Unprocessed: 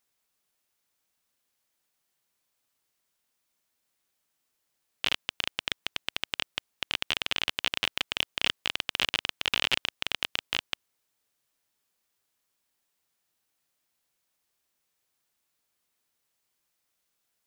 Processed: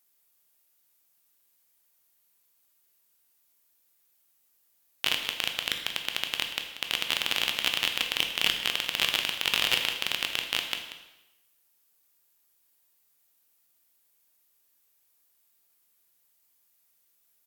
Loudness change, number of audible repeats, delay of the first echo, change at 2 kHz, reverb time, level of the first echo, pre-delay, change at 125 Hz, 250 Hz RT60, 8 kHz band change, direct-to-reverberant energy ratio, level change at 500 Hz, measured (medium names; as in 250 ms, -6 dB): +2.5 dB, 1, 186 ms, +2.0 dB, 0.95 s, -13.5 dB, 7 ms, -0.5 dB, 0.95 s, +6.0 dB, 4.0 dB, +1.5 dB